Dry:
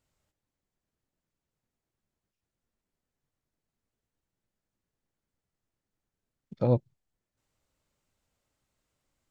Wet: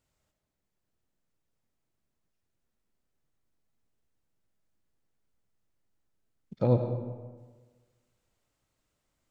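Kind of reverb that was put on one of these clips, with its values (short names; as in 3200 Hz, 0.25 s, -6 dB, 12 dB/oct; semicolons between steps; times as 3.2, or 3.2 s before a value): digital reverb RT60 1.4 s, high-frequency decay 0.6×, pre-delay 45 ms, DRR 5.5 dB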